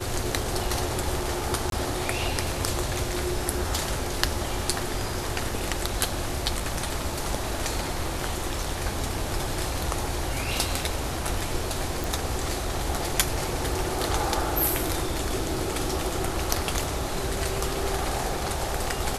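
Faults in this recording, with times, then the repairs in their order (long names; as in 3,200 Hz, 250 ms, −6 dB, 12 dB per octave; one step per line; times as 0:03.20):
0:01.70–0:01.72: drop-out 22 ms
0:12.04: click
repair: click removal
repair the gap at 0:01.70, 22 ms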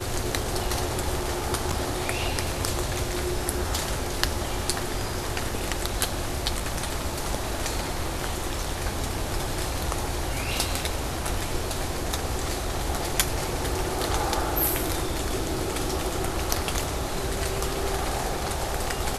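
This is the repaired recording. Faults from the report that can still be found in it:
none of them is left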